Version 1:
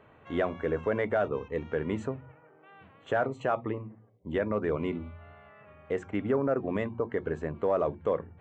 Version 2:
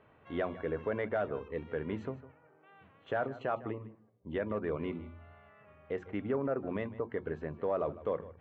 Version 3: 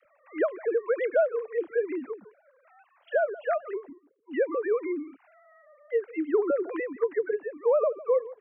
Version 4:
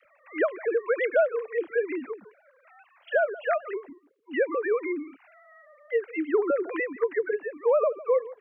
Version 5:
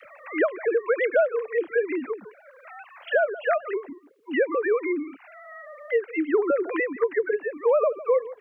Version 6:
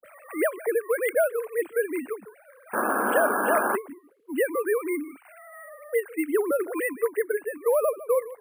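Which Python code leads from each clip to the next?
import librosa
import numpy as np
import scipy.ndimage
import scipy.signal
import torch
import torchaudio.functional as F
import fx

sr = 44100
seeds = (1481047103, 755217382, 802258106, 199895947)

y1 = scipy.signal.sosfilt(scipy.signal.butter(4, 5100.0, 'lowpass', fs=sr, output='sos'), x)
y1 = y1 + 10.0 ** (-17.0 / 20.0) * np.pad(y1, (int(154 * sr / 1000.0), 0))[:len(y1)]
y1 = F.gain(torch.from_numpy(y1), -5.5).numpy()
y2 = fx.sine_speech(y1, sr)
y2 = fx.dispersion(y2, sr, late='lows', ms=55.0, hz=450.0)
y2 = F.gain(torch.from_numpy(y2), 8.0).numpy()
y3 = fx.peak_eq(y2, sr, hz=2500.0, db=8.0, octaves=1.8)
y4 = fx.band_squash(y3, sr, depth_pct=40)
y4 = F.gain(torch.from_numpy(y4), 2.5).numpy()
y5 = fx.dispersion(y4, sr, late='highs', ms=57.0, hz=1300.0)
y5 = fx.spec_paint(y5, sr, seeds[0], shape='noise', start_s=2.73, length_s=1.03, low_hz=200.0, high_hz=1700.0, level_db=-23.0)
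y5 = np.repeat(scipy.signal.resample_poly(y5, 1, 4), 4)[:len(y5)]
y5 = F.gain(torch.from_numpy(y5), -2.0).numpy()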